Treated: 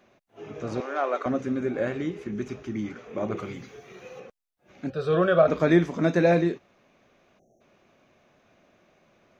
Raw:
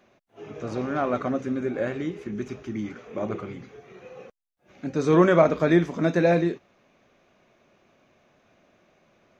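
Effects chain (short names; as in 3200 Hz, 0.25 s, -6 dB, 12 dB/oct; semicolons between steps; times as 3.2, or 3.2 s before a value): 0.8–1.26 HPF 400 Hz 24 dB/oct; 3.37–4.2 high shelf 3300 Hz +11 dB; 4.9–5.48 fixed phaser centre 1400 Hz, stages 8; 7.39–7.61 spectral delete 830–5500 Hz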